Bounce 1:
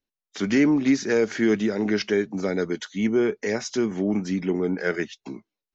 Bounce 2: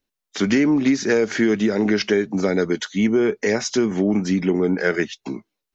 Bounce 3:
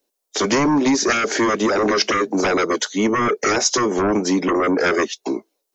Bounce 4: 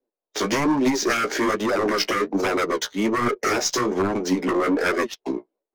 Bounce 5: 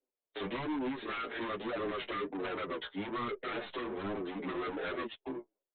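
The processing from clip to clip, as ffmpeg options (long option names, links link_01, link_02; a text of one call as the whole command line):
ffmpeg -i in.wav -af "acompressor=threshold=-21dB:ratio=6,volume=7dB" out.wav
ffmpeg -i in.wav -filter_complex "[0:a]bass=frequency=250:gain=-14,treble=frequency=4000:gain=11,acrossover=split=300|690[link_01][link_02][link_03];[link_02]aeval=exprs='0.168*sin(PI/2*4.47*val(0)/0.168)':channel_layout=same[link_04];[link_01][link_04][link_03]amix=inputs=3:normalize=0" out.wav
ffmpeg -i in.wav -af "aeval=exprs='0.75*(cos(1*acos(clip(val(0)/0.75,-1,1)))-cos(1*PI/2))+0.0596*(cos(2*acos(clip(val(0)/0.75,-1,1)))-cos(2*PI/2))':channel_layout=same,flanger=delay=7.9:depth=8.9:regen=29:speed=1.2:shape=sinusoidal,adynamicsmooth=sensitivity=7.5:basefreq=1300" out.wav
ffmpeg -i in.wav -filter_complex "[0:a]aresample=8000,asoftclip=type=tanh:threshold=-27dB,aresample=44100,asplit=2[link_01][link_02];[link_02]adelay=7.1,afreqshift=-2.7[link_03];[link_01][link_03]amix=inputs=2:normalize=1,volume=-5dB" out.wav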